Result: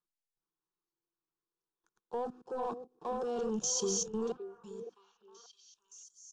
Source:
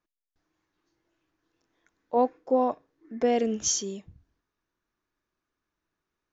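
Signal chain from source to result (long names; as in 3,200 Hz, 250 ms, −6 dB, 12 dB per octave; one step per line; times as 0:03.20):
delay that plays each chunk backwards 480 ms, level −6.5 dB
mains-hum notches 50/100/150/200/250/300 Hz
output level in coarse steps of 18 dB
leveller curve on the samples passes 2
phaser with its sweep stopped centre 410 Hz, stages 8
echo through a band-pass that steps 570 ms, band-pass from 460 Hz, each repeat 1.4 octaves, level −9 dB
MP3 64 kbit/s 22,050 Hz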